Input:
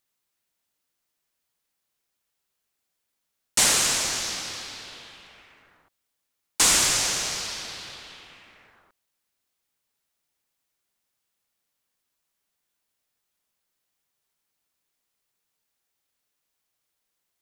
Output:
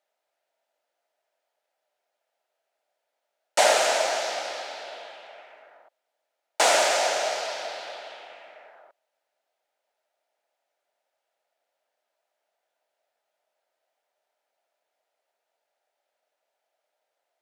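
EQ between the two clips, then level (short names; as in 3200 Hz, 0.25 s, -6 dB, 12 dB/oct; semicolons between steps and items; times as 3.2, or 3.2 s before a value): resonant high-pass 630 Hz, resonance Q 4.8; LPF 1500 Hz 6 dB/oct; notch 1100 Hz, Q 5.4; +5.5 dB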